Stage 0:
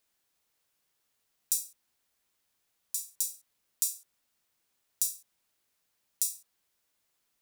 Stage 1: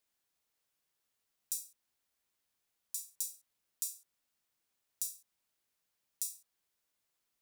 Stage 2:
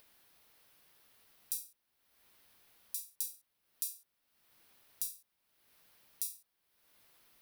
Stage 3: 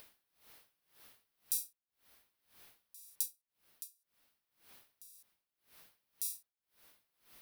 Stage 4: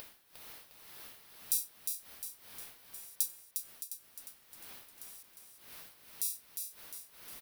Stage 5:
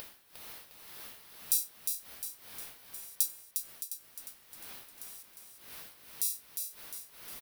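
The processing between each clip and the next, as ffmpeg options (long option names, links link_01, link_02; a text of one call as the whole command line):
ffmpeg -i in.wav -af "alimiter=limit=-6.5dB:level=0:latency=1:release=364,volume=-6dB" out.wav
ffmpeg -i in.wav -af "equalizer=frequency=7200:width_type=o:width=0.6:gain=-10.5,acompressor=mode=upward:threshold=-55dB:ratio=2.5,volume=3dB" out.wav
ffmpeg -i in.wav -filter_complex "[0:a]asplit=2[link_01][link_02];[link_02]alimiter=limit=-18dB:level=0:latency=1:release=405,volume=-0.5dB[link_03];[link_01][link_03]amix=inputs=2:normalize=0,aeval=exprs='val(0)*pow(10,-26*(0.5-0.5*cos(2*PI*1.9*n/s))/20)':channel_layout=same,volume=2dB" out.wav
ffmpeg -i in.wav -af "acompressor=mode=upward:threshold=-46dB:ratio=2.5,aecho=1:1:355|710|1065|1420|1775|2130:0.501|0.241|0.115|0.0554|0.0266|0.0128,volume=3.5dB" out.wav
ffmpeg -i in.wav -filter_complex "[0:a]asplit=2[link_01][link_02];[link_02]adelay=19,volume=-12dB[link_03];[link_01][link_03]amix=inputs=2:normalize=0,volume=3dB" out.wav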